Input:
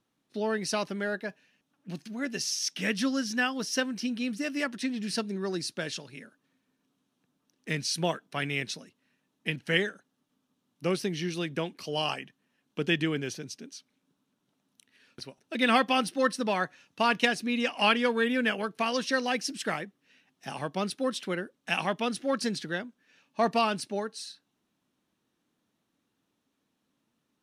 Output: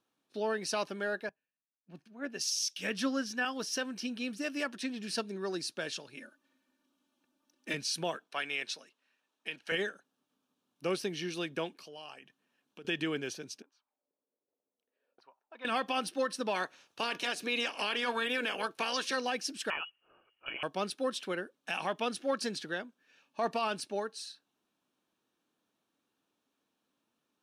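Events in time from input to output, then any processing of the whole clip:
1.29–3.45 s: three bands expanded up and down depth 100%
6.17–7.74 s: comb 3.4 ms, depth 78%
8.24–9.72 s: frequency weighting A
11.76–12.85 s: compression 2.5:1, threshold -49 dBFS
13.62–15.65 s: auto-wah 470–1000 Hz, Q 3.9, up, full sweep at -45 dBFS
16.54–19.15 s: spectral peaks clipped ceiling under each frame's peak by 14 dB
19.70–20.63 s: frequency inversion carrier 3.1 kHz
whole clip: tone controls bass -10 dB, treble -2 dB; band-stop 2 kHz, Q 8.9; peak limiter -21 dBFS; trim -1.5 dB

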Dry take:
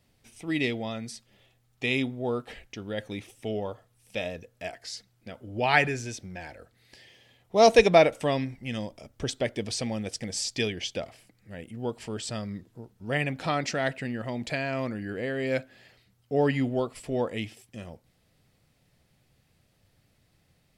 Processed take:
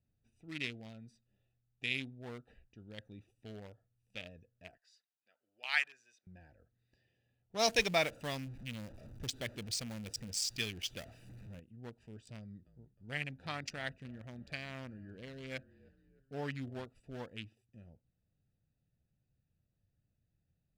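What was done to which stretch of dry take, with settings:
4.77–6.27 s: high-pass 1.2 kHz
7.59–11.60 s: jump at every zero crossing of -31.5 dBFS
12.35–16.86 s: frequency-shifting echo 309 ms, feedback 51%, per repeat -45 Hz, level -18.5 dB
whole clip: local Wiener filter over 41 samples; amplifier tone stack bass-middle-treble 5-5-5; trim +3 dB

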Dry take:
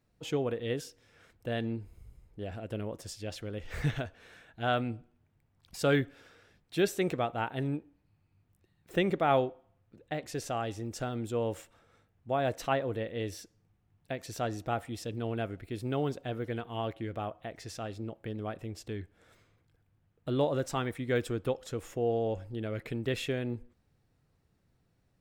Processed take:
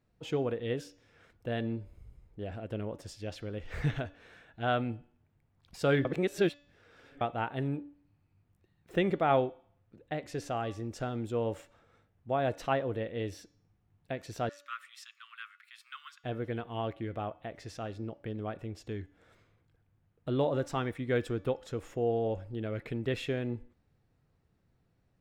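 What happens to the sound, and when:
6.05–7.21 s: reverse
14.49–16.24 s: steep high-pass 1.1 kHz 96 dB/octave
whole clip: treble shelf 5.6 kHz -10.5 dB; de-hum 288 Hz, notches 25

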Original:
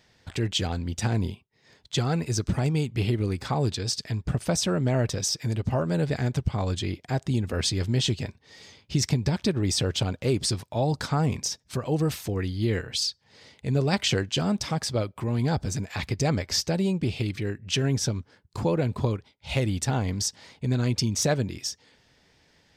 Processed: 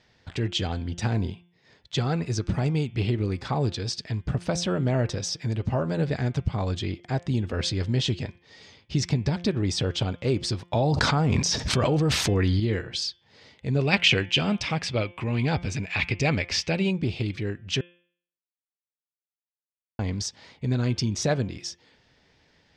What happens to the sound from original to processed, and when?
10.73–12.60 s: level flattener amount 100%
13.79–16.91 s: peaking EQ 2.5 kHz +13.5 dB 0.69 oct
17.81–19.99 s: mute
whole clip: low-pass 5.3 kHz 12 dB/octave; de-hum 174.6 Hz, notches 20

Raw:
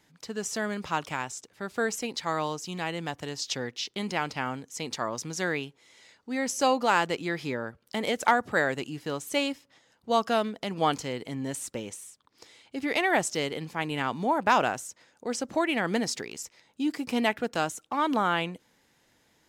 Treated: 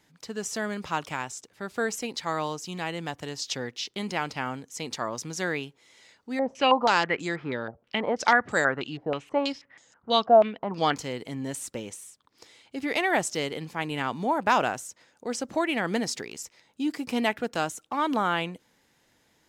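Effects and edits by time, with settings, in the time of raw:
6.39–10.96 s: step-sequenced low-pass 6.2 Hz 710–7200 Hz

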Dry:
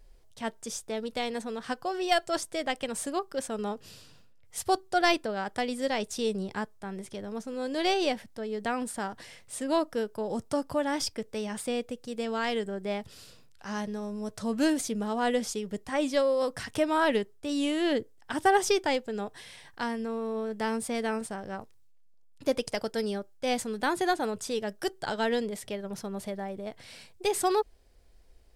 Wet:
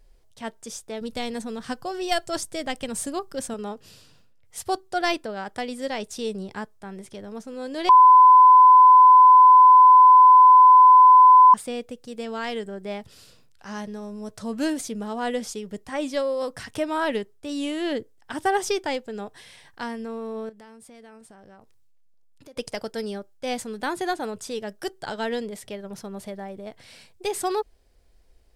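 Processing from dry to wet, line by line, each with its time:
1.01–3.54 s: tone controls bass +9 dB, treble +5 dB
7.89–11.54 s: bleep 1.01 kHz -8 dBFS
20.49–22.57 s: compression 4:1, threshold -48 dBFS

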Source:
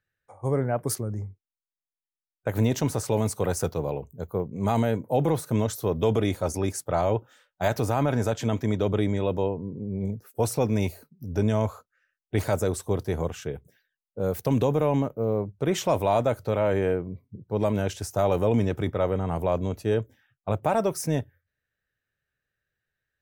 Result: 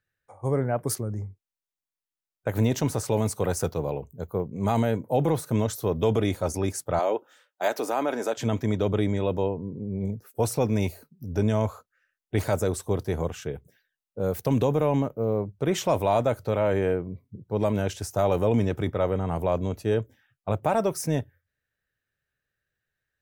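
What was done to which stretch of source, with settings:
6.99–8.37 s: high-pass 280 Hz 24 dB/octave

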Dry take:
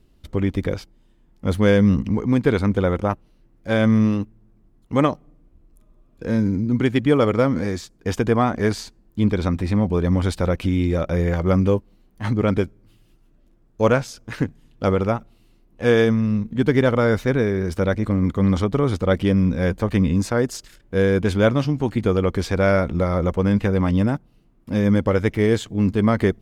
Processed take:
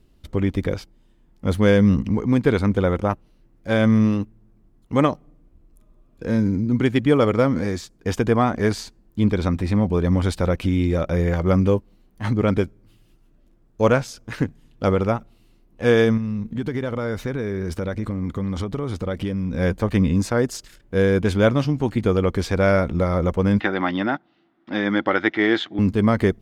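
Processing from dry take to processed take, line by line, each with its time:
16.17–19.54 s: compression, threshold -21 dBFS
23.60–25.79 s: cabinet simulation 300–4800 Hz, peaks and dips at 330 Hz +9 dB, 460 Hz -9 dB, 760 Hz +8 dB, 1.4 kHz +8 dB, 1.9 kHz +9 dB, 3.5 kHz +8 dB

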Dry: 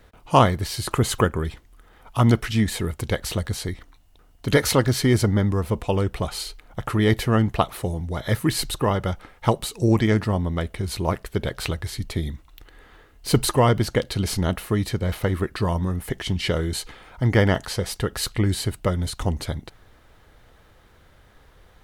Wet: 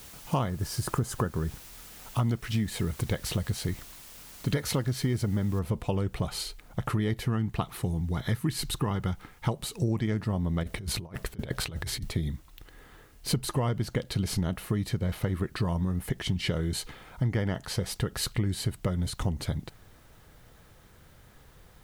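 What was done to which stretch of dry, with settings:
0.49–1.68 s: time-frequency box 1.8–4.7 kHz -10 dB
5.59 s: noise floor step -45 dB -62 dB
7.27–9.48 s: peaking EQ 580 Hz -9.5 dB 0.39 oct
10.63–12.10 s: compressor with a negative ratio -31 dBFS, ratio -0.5
whole clip: peaking EQ 150 Hz +7 dB 1.2 oct; compression, threshold -21 dBFS; trim -3.5 dB

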